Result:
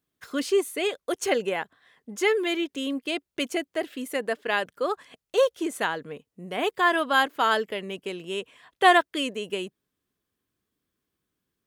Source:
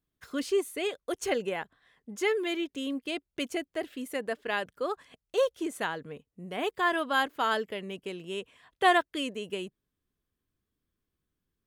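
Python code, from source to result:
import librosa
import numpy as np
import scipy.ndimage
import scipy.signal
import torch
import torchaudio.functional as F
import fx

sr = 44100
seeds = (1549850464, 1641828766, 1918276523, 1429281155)

y = fx.highpass(x, sr, hz=200.0, slope=6)
y = y * librosa.db_to_amplitude(5.5)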